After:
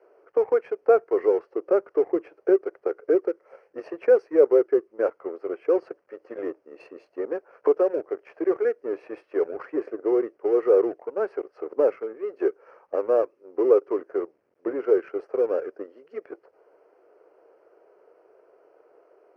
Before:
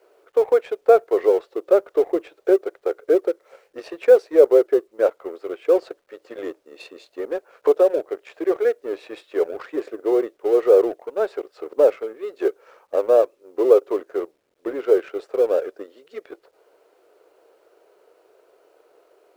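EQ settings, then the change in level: dynamic EQ 620 Hz, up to -7 dB, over -29 dBFS, Q 1.5; running mean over 12 samples; HPF 82 Hz; 0.0 dB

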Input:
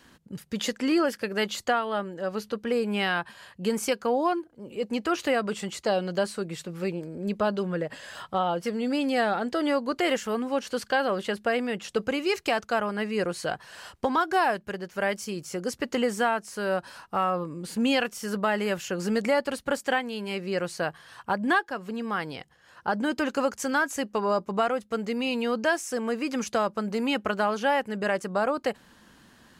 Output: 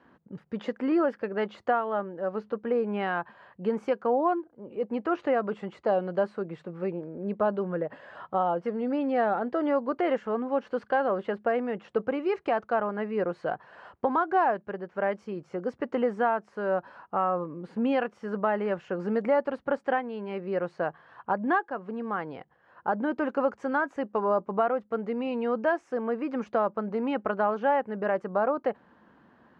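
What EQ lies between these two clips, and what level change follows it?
HPF 160 Hz 6 dB/oct; LPF 1100 Hz 12 dB/oct; low shelf 460 Hz -4.5 dB; +3.0 dB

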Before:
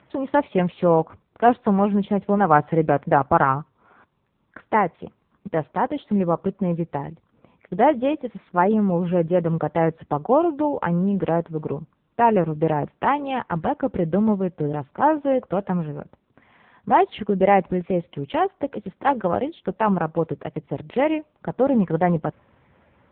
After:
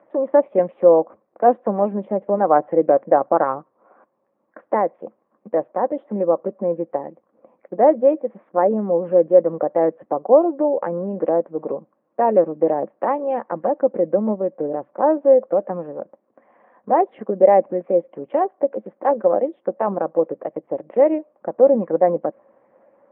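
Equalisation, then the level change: bell 570 Hz +11.5 dB 1 oct; dynamic EQ 980 Hz, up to -4 dB, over -22 dBFS, Q 0.91; speaker cabinet 210–2200 Hz, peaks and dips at 220 Hz +8 dB, 320 Hz +9 dB, 540 Hz +9 dB, 770 Hz +6 dB, 1100 Hz +8 dB, 1800 Hz +4 dB; -10.0 dB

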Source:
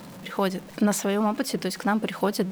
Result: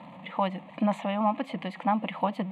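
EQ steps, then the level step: BPF 210–2300 Hz; fixed phaser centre 1500 Hz, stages 6; +2.5 dB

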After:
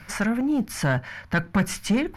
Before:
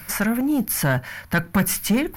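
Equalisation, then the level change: dynamic EQ 9200 Hz, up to +6 dB, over -37 dBFS, Q 0.73; air absorption 93 m; -2.0 dB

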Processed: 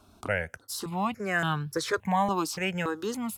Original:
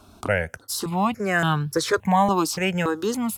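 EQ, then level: dynamic EQ 2000 Hz, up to +3 dB, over -36 dBFS, Q 0.77; -7.5 dB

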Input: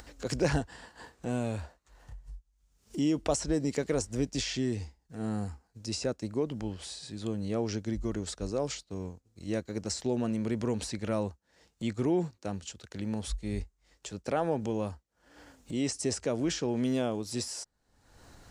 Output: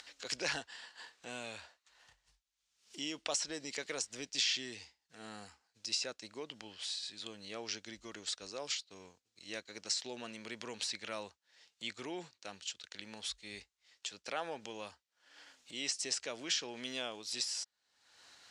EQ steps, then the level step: band-pass 3500 Hz, Q 1.1; +5.0 dB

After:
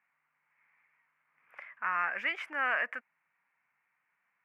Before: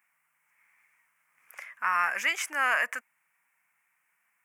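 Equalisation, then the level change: dynamic EQ 1000 Hz, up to -5 dB, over -41 dBFS, Q 2.1; air absorption 430 m; 0.0 dB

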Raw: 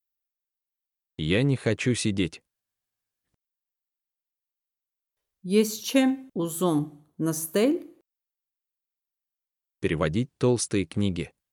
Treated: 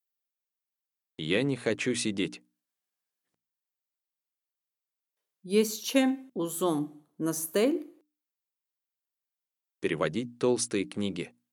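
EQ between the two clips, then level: HPF 210 Hz 12 dB/oct; notches 60/120/180/240/300 Hz; -2.0 dB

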